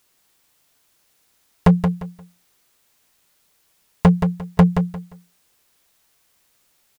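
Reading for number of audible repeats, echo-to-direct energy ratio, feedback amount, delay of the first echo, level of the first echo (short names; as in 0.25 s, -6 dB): 3, -6.5 dB, 24%, 0.175 s, -7.0 dB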